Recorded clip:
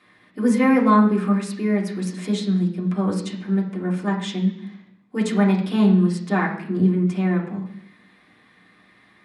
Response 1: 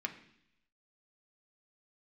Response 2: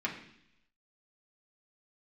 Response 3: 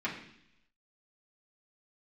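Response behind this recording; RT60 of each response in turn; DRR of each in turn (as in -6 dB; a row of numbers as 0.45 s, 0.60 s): 2; 0.70 s, 0.70 s, 0.70 s; 3.5 dB, -3.5 dB, -7.5 dB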